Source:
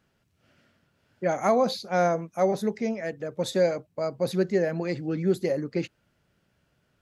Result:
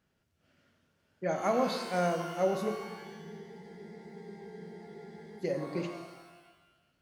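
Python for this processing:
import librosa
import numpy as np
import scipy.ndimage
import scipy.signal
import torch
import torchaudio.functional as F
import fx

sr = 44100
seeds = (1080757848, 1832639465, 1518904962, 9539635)

y = fx.spec_freeze(x, sr, seeds[0], at_s=2.75, hold_s=2.64)
y = fx.rev_shimmer(y, sr, seeds[1], rt60_s=1.2, semitones=12, shimmer_db=-8, drr_db=4.5)
y = y * librosa.db_to_amplitude(-7.0)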